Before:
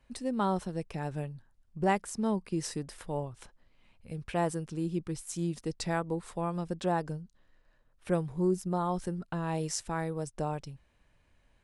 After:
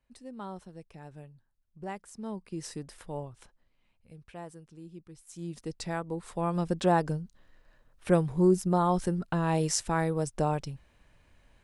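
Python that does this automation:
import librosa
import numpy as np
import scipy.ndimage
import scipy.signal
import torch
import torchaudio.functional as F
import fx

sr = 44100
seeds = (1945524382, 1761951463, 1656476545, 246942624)

y = fx.gain(x, sr, db=fx.line((1.94, -11.5), (2.78, -3.0), (3.3, -3.0), (4.46, -14.0), (5.16, -14.0), (5.59, -2.5), (6.09, -2.5), (6.62, 5.5)))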